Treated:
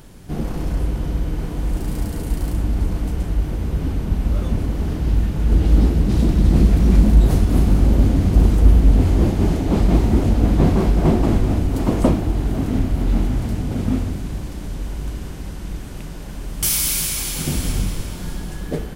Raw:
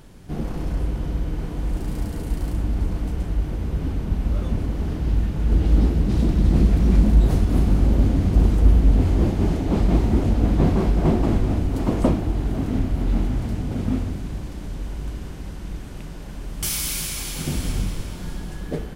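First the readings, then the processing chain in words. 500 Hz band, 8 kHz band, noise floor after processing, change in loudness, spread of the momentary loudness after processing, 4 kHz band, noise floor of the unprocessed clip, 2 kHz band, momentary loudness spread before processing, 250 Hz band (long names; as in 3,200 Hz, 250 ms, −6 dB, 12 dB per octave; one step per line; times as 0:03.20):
+3.0 dB, +6.5 dB, −31 dBFS, +3.0 dB, 15 LU, +4.0 dB, −34 dBFS, +3.5 dB, 15 LU, +3.0 dB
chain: high-shelf EQ 7,500 Hz +6 dB
level +3 dB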